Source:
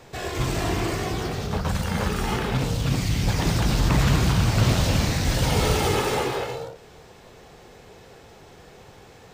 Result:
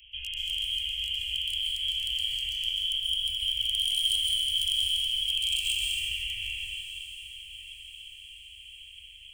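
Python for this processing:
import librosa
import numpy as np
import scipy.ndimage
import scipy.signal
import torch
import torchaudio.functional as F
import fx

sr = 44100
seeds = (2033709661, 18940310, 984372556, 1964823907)

p1 = fx.cvsd(x, sr, bps=64000)
p2 = fx.spec_box(p1, sr, start_s=5.25, length_s=0.6, low_hz=350.0, high_hz=950.0, gain_db=7)
p3 = fx.freq_invert(p2, sr, carrier_hz=3200)
p4 = fx.low_shelf(p3, sr, hz=320.0, db=-6.5)
p5 = fx.over_compress(p4, sr, threshold_db=-30.0, ratio=-1.0)
p6 = p4 + (p5 * 10.0 ** (1.5 / 20.0))
p7 = np.clip(p6, -10.0 ** (-10.0 / 20.0), 10.0 ** (-10.0 / 20.0))
p8 = scipy.signal.sosfilt(scipy.signal.cheby2(4, 80, [320.0, 1100.0], 'bandstop', fs=sr, output='sos'), p7)
p9 = p8 + fx.echo_diffused(p8, sr, ms=1160, feedback_pct=47, wet_db=-14.0, dry=0)
p10 = fx.rev_plate(p9, sr, seeds[0], rt60_s=1.8, hf_ratio=0.8, predelay_ms=115, drr_db=-1.5)
y = p10 * 10.0 ** (1.5 / 20.0)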